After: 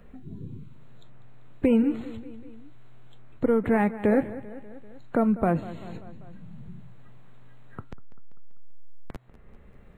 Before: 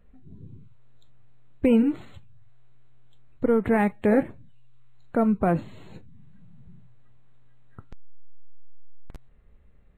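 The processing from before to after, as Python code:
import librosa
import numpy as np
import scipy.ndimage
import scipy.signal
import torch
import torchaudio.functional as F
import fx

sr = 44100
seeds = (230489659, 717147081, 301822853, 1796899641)

p1 = x + fx.echo_feedback(x, sr, ms=195, feedback_pct=47, wet_db=-18, dry=0)
y = fx.band_squash(p1, sr, depth_pct=40)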